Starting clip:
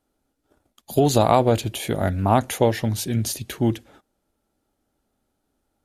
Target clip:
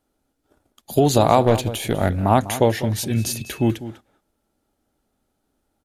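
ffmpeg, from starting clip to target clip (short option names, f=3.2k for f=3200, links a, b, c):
-filter_complex "[0:a]asplit=2[a][b];[b]adelay=198.3,volume=-14dB,highshelf=f=4k:g=-4.46[c];[a][c]amix=inputs=2:normalize=0,asettb=1/sr,asplit=3[d][e][f];[d]atrim=end=1.464[g];[e]atrim=start=1.46:end=2.12,asetpts=PTS-STARTPTS,afade=t=in:d=0.004:c=qsin,afade=t=out:st=0.656:d=0.004:c=qsin,aeval=exprs='0.596*(cos(1*acos(clip(val(0)/0.596,-1,1)))-cos(1*PI/2))+0.0376*(cos(6*acos(clip(val(0)/0.596,-1,1)))-cos(6*PI/2))':c=same[h];[f]atrim=start=2.116[i];[g][h]acrossfade=d=0.004:c1=hsin:c2=qsin[j];[j][i]acrossfade=d=0.004:c1=qsin:c2=hsin,asettb=1/sr,asplit=3[k][l][m];[k]atrim=end=3.094[n];[l]atrim=start=3.09:end=3.71,asetpts=PTS-STARTPTS,afade=t=in:d=0.004:c=qsin,afade=t=out:st=0.616:d=0.004:c=qsin,aeval=exprs='val(0)+0.00708*sin(2*PI*2600*n/s)':c=same[o];[m]atrim=start=3.706[p];[n][o]acrossfade=d=0.004:c1=hsin:c2=qsin[q];[q][p]acrossfade=d=0.004:c1=qsin:c2=hsin,volume=1.5dB"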